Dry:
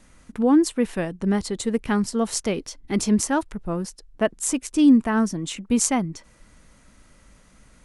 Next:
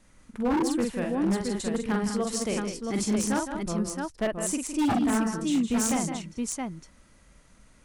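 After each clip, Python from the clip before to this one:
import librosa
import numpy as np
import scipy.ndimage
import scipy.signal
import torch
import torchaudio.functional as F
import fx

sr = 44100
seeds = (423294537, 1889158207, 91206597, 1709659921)

y = fx.echo_multitap(x, sr, ms=(46, 162, 200, 671), db=(-4.0, -9.5, -9.0, -4.5))
y = 10.0 ** (-12.5 / 20.0) * (np.abs((y / 10.0 ** (-12.5 / 20.0) + 3.0) % 4.0 - 2.0) - 1.0)
y = F.gain(torch.from_numpy(y), -6.5).numpy()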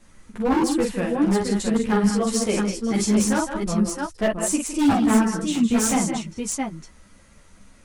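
y = fx.ensemble(x, sr)
y = F.gain(torch.from_numpy(y), 8.5).numpy()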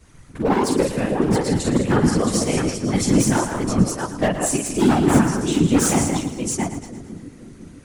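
y = fx.whisperise(x, sr, seeds[0])
y = fx.echo_split(y, sr, split_hz=450.0, low_ms=503, high_ms=113, feedback_pct=52, wet_db=-12.0)
y = F.gain(torch.from_numpy(y), 2.0).numpy()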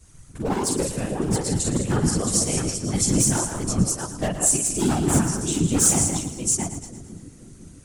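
y = fx.graphic_eq(x, sr, hz=(250, 500, 1000, 2000, 4000, 8000), db=(-6, -5, -5, -7, -3, 7))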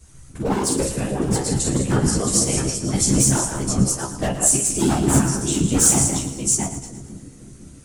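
y = fx.comb_fb(x, sr, f0_hz=67.0, decay_s=0.19, harmonics='all', damping=0.0, mix_pct=80)
y = F.gain(torch.from_numpy(y), 7.5).numpy()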